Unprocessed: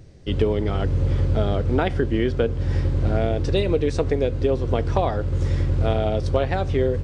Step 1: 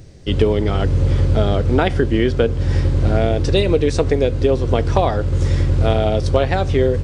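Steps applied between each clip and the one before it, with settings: treble shelf 4.2 kHz +6 dB; trim +5 dB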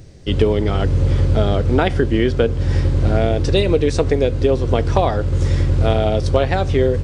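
no audible change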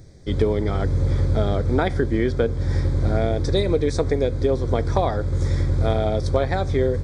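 Butterworth band-stop 2.8 kHz, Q 3.2; trim -4.5 dB

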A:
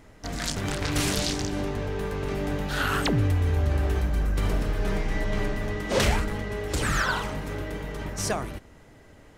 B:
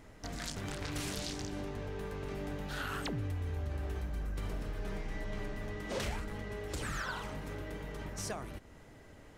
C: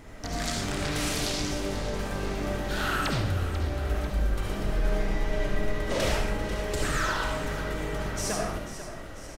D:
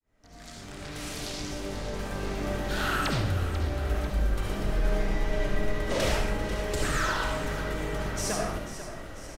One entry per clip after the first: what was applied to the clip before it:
compression 2:1, threshold -39 dBFS, peak gain reduction 11.5 dB; trim -3.5 dB
frequency-shifting echo 492 ms, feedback 59%, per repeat -35 Hz, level -12 dB; reverberation RT60 0.60 s, pre-delay 30 ms, DRR -1 dB; trim +7 dB
fade-in on the opening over 2.66 s

